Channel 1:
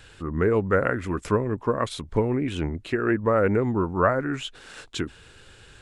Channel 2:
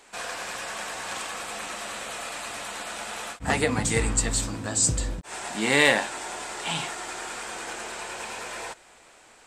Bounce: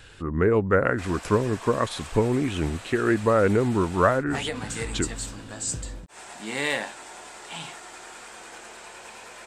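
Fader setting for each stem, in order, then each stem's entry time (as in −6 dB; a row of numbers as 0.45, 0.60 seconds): +1.0, −7.5 decibels; 0.00, 0.85 seconds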